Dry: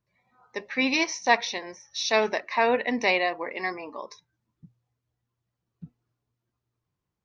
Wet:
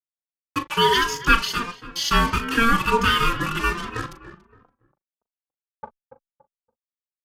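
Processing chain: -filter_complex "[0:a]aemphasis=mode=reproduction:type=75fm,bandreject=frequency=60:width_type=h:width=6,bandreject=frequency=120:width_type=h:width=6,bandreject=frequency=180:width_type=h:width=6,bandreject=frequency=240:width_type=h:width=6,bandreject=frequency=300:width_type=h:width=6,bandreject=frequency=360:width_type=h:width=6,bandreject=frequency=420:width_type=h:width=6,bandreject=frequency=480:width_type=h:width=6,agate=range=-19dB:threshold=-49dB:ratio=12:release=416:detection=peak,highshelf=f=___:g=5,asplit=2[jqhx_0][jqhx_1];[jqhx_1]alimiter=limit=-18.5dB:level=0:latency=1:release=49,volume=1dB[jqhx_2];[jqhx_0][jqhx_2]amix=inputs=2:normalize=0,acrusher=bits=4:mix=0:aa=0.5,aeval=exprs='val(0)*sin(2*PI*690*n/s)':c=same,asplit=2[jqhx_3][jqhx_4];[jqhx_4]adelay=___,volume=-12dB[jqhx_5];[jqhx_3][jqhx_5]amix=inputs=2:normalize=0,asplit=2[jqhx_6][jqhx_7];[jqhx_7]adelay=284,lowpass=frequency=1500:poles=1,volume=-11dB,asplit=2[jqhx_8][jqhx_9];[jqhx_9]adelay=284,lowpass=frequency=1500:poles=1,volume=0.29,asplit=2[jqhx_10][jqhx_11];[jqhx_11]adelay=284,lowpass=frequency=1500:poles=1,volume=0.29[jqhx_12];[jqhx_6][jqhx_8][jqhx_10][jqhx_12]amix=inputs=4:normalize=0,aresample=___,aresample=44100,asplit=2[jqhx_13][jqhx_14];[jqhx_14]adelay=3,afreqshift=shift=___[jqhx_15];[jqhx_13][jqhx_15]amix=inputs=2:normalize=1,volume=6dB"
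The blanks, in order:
2800, 39, 32000, 1.4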